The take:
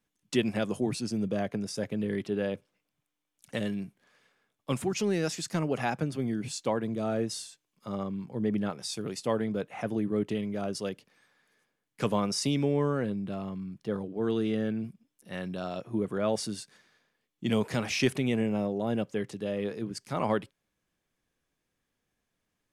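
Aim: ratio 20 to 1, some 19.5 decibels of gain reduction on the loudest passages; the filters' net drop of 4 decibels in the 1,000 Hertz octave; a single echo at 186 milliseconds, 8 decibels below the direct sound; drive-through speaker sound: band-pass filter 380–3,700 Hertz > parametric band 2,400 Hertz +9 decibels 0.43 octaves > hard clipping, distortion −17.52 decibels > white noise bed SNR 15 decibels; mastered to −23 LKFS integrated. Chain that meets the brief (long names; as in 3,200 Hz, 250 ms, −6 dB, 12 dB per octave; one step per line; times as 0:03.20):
parametric band 1,000 Hz −5.5 dB
downward compressor 20 to 1, threshold −40 dBFS
band-pass filter 380–3,700 Hz
parametric band 2,400 Hz +9 dB 0.43 octaves
single-tap delay 186 ms −8 dB
hard clipping −38.5 dBFS
white noise bed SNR 15 dB
level +26 dB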